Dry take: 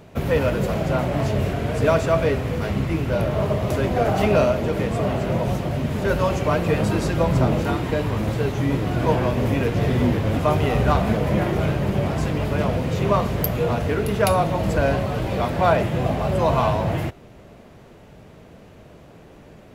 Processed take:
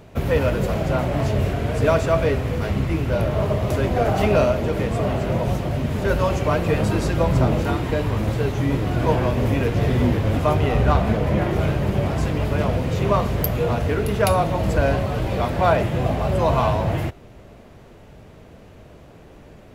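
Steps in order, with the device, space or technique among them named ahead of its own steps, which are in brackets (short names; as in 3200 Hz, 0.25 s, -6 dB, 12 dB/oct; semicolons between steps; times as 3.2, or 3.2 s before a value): low shelf boost with a cut just above (low shelf 91 Hz +6 dB; bell 170 Hz -2.5 dB 0.77 oct); 10.53–11.51 high shelf 5800 Hz -5.5 dB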